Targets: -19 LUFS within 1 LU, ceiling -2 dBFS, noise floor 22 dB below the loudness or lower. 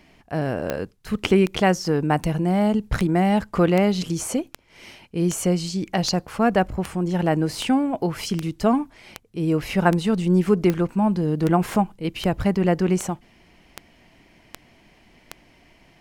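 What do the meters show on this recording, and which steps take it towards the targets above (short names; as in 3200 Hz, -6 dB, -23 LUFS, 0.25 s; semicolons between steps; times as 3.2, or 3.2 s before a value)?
clicks 20; loudness -22.5 LUFS; peak -2.5 dBFS; loudness target -19.0 LUFS
-> de-click; gain +3.5 dB; limiter -2 dBFS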